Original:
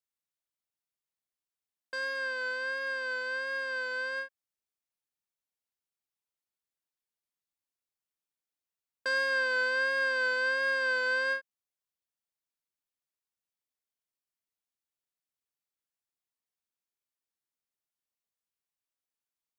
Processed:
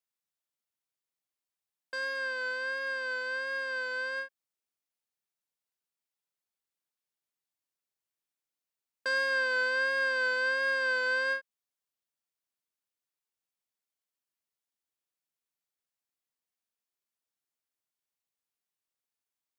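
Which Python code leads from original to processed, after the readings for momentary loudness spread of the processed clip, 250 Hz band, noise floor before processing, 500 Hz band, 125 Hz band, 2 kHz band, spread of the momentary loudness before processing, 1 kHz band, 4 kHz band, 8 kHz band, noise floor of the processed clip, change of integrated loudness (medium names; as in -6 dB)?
8 LU, -0.5 dB, under -85 dBFS, 0.0 dB, no reading, 0.0 dB, 8 LU, 0.0 dB, 0.0 dB, 0.0 dB, under -85 dBFS, 0.0 dB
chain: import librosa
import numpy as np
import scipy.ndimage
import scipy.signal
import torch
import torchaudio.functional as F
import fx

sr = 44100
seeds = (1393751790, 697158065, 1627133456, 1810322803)

y = fx.highpass(x, sr, hz=110.0, slope=6)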